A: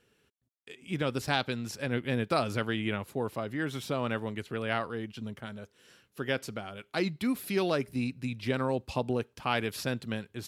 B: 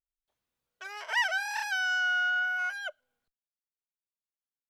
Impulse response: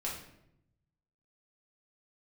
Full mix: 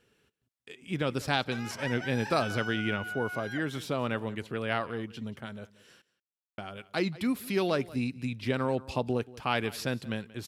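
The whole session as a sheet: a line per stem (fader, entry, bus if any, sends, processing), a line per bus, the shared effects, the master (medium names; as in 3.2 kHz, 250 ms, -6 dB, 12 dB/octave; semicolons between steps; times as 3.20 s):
+0.5 dB, 0.00 s, muted 6.02–6.58 s, no send, echo send -20 dB, none
-1.5 dB, 0.70 s, no send, echo send -11.5 dB, compression, threshold -36 dBFS, peak gain reduction 13 dB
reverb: none
echo: delay 181 ms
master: treble shelf 11 kHz -3.5 dB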